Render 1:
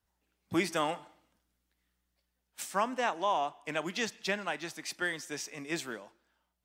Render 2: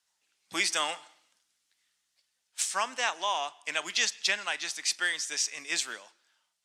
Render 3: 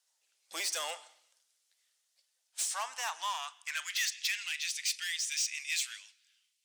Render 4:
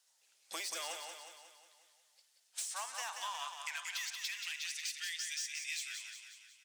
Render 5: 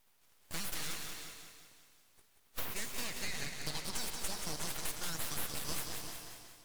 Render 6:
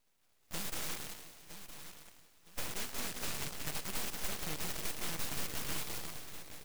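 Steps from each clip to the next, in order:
meter weighting curve ITU-R 468
soft clipping −28.5 dBFS, distortion −8 dB; high-shelf EQ 3,000 Hz +10.5 dB; high-pass filter sweep 520 Hz → 2,400 Hz, 0:02.29–0:04.39; level −8 dB
downward compressor 5 to 1, threshold −44 dBFS, peak gain reduction 14.5 dB; on a send: repeating echo 181 ms, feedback 53%, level −6 dB; on the sum: level +4 dB
full-wave rectification; reverb whose tail is shaped and stops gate 430 ms rising, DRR 8 dB; level +4.5 dB
in parallel at −4 dB: bit reduction 6 bits; on the sum: repeating echo 963 ms, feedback 29%, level −11 dB; short delay modulated by noise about 1,500 Hz, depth 0.23 ms; level −4.5 dB

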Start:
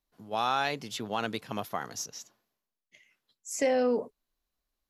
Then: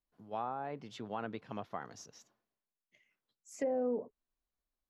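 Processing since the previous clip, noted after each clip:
high-shelf EQ 2,900 Hz −10.5 dB
treble cut that deepens with the level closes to 810 Hz, closed at −24.5 dBFS
level −6.5 dB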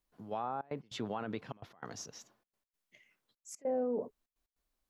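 brickwall limiter −33.5 dBFS, peak gain reduction 9 dB
gate pattern "xxxxxx.x." 148 BPM −24 dB
level +6.5 dB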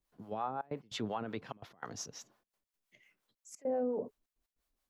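two-band tremolo in antiphase 5.7 Hz, depth 70%, crossover 500 Hz
level +3.5 dB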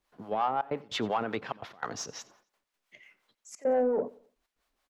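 mid-hump overdrive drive 11 dB, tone 2,500 Hz, clips at −23.5 dBFS
repeating echo 90 ms, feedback 40%, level −22 dB
level +6.5 dB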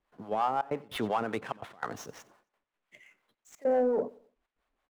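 running median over 9 samples

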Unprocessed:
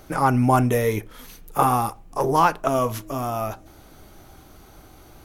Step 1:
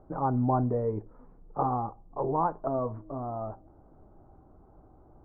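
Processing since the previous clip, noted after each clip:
inverse Chebyshev low-pass filter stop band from 3,400 Hz, stop band 60 dB
level −7.5 dB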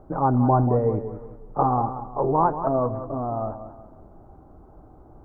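feedback echo with a swinging delay time 185 ms, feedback 38%, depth 71 cents, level −11 dB
level +7 dB

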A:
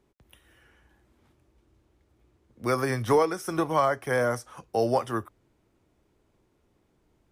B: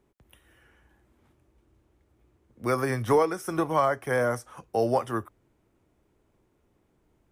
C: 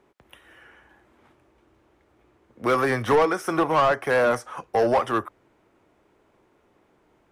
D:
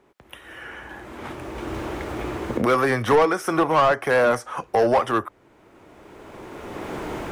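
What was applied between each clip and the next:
parametric band 4,500 Hz −4.5 dB 1.1 octaves
mid-hump overdrive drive 18 dB, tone 2,100 Hz, clips at −12.5 dBFS; level +1 dB
camcorder AGC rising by 17 dB per second; level +2 dB

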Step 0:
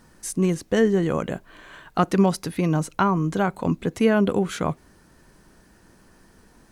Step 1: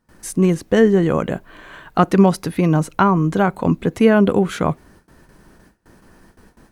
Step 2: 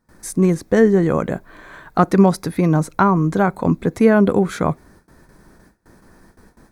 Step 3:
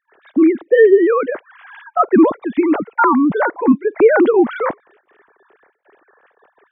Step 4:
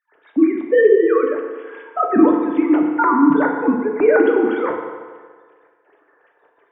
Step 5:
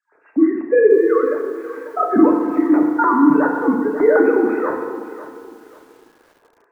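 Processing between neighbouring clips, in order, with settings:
parametric band 6,700 Hz −5.5 dB 2 octaves; noise gate with hold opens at −44 dBFS; level +6 dB
parametric band 2,900 Hz −13 dB 0.25 octaves
three sine waves on the formant tracks; boost into a limiter +4.5 dB; level −1 dB
feedback delay network reverb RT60 1.6 s, low-frequency decay 0.8×, high-frequency decay 0.75×, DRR 0.5 dB; level −5.5 dB
hearing-aid frequency compression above 1,500 Hz 1.5 to 1; feedback echo at a low word length 542 ms, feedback 35%, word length 7 bits, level −14 dB

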